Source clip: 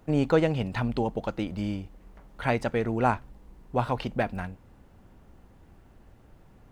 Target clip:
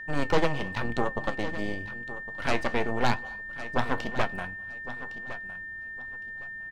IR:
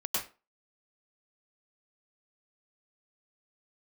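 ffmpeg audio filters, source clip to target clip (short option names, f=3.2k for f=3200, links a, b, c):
-filter_complex "[0:a]aeval=exprs='0.335*(cos(1*acos(clip(val(0)/0.335,-1,1)))-cos(1*PI/2))+0.119*(cos(6*acos(clip(val(0)/0.335,-1,1)))-cos(6*PI/2))':c=same,aecho=1:1:1110|2220|3330:0.2|0.0459|0.0106,flanger=delay=7:depth=6:regen=67:speed=0.93:shape=triangular,aeval=exprs='val(0)+0.0141*sin(2*PI*1800*n/s)':c=same,asplit=2[a][b];[1:a]atrim=start_sample=2205,adelay=105[c];[b][c]afir=irnorm=-1:irlink=0,volume=-27dB[d];[a][d]amix=inputs=2:normalize=0"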